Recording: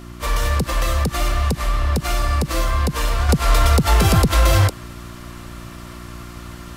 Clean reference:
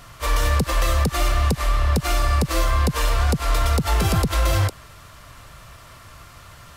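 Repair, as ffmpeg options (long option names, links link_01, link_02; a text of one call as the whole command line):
ffmpeg -i in.wav -af "bandreject=frequency=59.3:width_type=h:width=4,bandreject=frequency=118.6:width_type=h:width=4,bandreject=frequency=177.9:width_type=h:width=4,bandreject=frequency=237.2:width_type=h:width=4,bandreject=frequency=296.5:width_type=h:width=4,bandreject=frequency=355.8:width_type=h:width=4,asetnsamples=nb_out_samples=441:pad=0,asendcmd='3.29 volume volume -5dB',volume=0dB" out.wav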